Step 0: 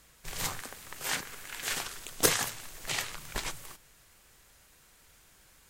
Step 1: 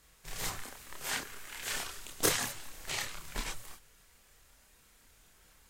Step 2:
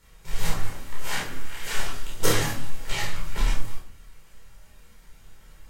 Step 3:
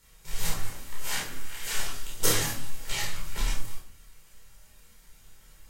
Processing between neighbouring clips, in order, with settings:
chorus voices 6, 0.76 Hz, delay 29 ms, depth 2.7 ms
tone controls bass +4 dB, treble -3 dB; simulated room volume 540 m³, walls furnished, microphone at 4.5 m
treble shelf 3.6 kHz +9.5 dB; trim -5.5 dB

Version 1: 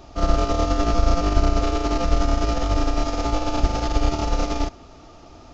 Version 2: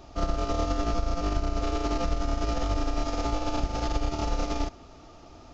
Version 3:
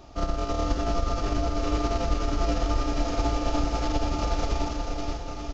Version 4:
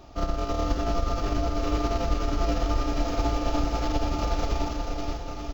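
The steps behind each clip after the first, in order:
compression, threshold -18 dBFS, peak gain reduction 8 dB; trim -4 dB
bouncing-ball echo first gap 480 ms, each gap 0.85×, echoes 5
decimation joined by straight lines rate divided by 2×

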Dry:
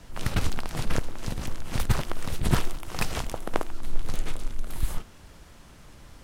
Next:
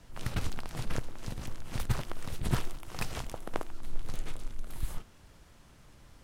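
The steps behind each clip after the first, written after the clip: peaking EQ 120 Hz +4 dB 0.25 oct; trim -7.5 dB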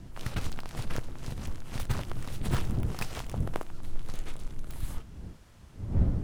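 tracing distortion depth 0.049 ms; wind noise 120 Hz -35 dBFS

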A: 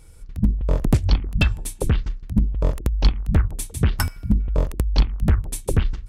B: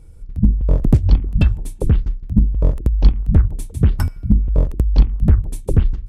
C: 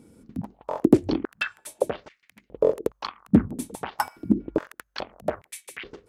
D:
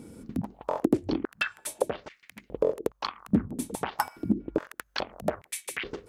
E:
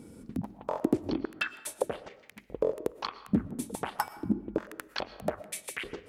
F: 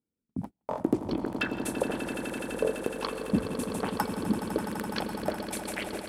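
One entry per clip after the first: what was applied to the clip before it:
tilt shelf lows +7 dB, about 720 Hz; trim -1.5 dB
step-sequenced high-pass 2.4 Hz 240–2100 Hz
compression 2:1, threshold -37 dBFS, peak gain reduction 15.5 dB; trim +6.5 dB
reverberation RT60 0.80 s, pre-delay 78 ms, DRR 15.5 dB; trim -3 dB
echo with a slow build-up 84 ms, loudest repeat 8, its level -12 dB; gate -36 dBFS, range -40 dB

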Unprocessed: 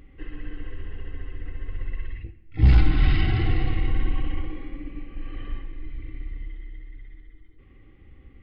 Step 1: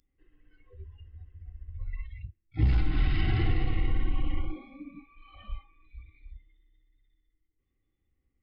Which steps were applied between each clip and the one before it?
spectral noise reduction 26 dB; compression 10:1, threshold -18 dBFS, peak gain reduction 8 dB; trim -1.5 dB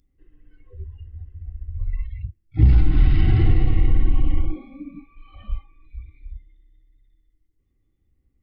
bass shelf 480 Hz +10.5 dB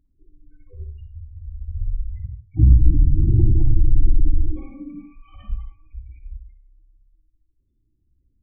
spectral gate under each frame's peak -25 dB strong; reverberation RT60 0.35 s, pre-delay 48 ms, DRR 6 dB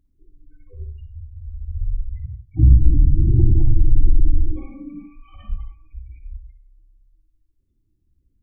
hum notches 50/100/150/200/250/300 Hz; trim +1.5 dB

